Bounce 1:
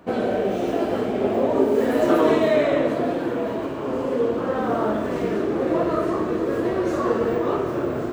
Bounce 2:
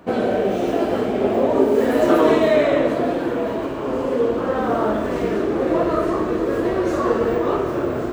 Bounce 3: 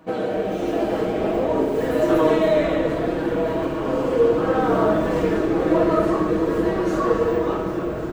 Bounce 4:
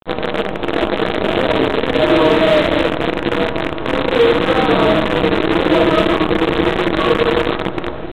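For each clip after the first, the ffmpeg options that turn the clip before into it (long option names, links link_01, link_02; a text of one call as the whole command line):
ffmpeg -i in.wav -af "asubboost=boost=3:cutoff=63,volume=3dB" out.wav
ffmpeg -i in.wav -filter_complex "[0:a]aecho=1:1:6.3:0.59,dynaudnorm=framelen=100:gausssize=17:maxgain=11.5dB,asplit=7[link_01][link_02][link_03][link_04][link_05][link_06][link_07];[link_02]adelay=274,afreqshift=-140,volume=-12dB[link_08];[link_03]adelay=548,afreqshift=-280,volume=-17.2dB[link_09];[link_04]adelay=822,afreqshift=-420,volume=-22.4dB[link_10];[link_05]adelay=1096,afreqshift=-560,volume=-27.6dB[link_11];[link_06]adelay=1370,afreqshift=-700,volume=-32.8dB[link_12];[link_07]adelay=1644,afreqshift=-840,volume=-38dB[link_13];[link_01][link_08][link_09][link_10][link_11][link_12][link_13]amix=inputs=7:normalize=0,volume=-5.5dB" out.wav
ffmpeg -i in.wav -af "aresample=8000,acrusher=bits=4:dc=4:mix=0:aa=0.000001,aresample=44100,volume=10.5dB,asoftclip=hard,volume=-10.5dB,volume=5dB" out.wav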